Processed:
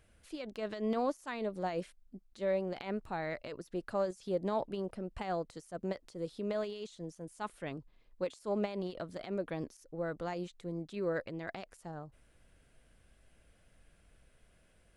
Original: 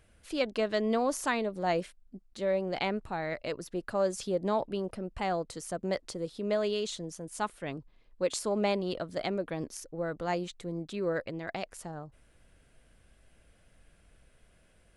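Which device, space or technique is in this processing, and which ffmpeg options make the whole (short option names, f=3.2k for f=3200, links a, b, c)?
de-esser from a sidechain: -filter_complex "[0:a]asplit=2[a][b];[b]highpass=f=4.6k:w=0.5412,highpass=f=4.6k:w=1.3066,apad=whole_len=660126[c];[a][c]sidechaincompress=threshold=-52dB:ratio=6:attack=0.52:release=61,volume=-3dB"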